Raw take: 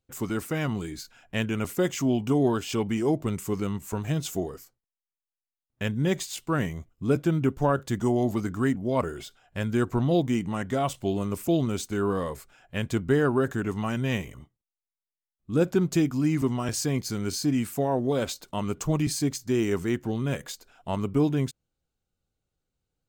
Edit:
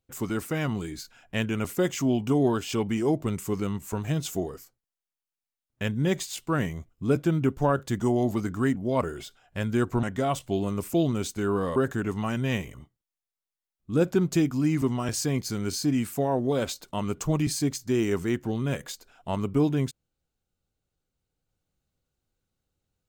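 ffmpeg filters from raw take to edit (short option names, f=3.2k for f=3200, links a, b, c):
-filter_complex "[0:a]asplit=3[a][b][c];[a]atrim=end=10.032[d];[b]atrim=start=10.568:end=12.302[e];[c]atrim=start=13.358[f];[d][e]acrossfade=d=0.004:c1=hsin:c2=hsin[g];[g][f]acrossfade=d=0.004:c1=hsin:c2=hsin"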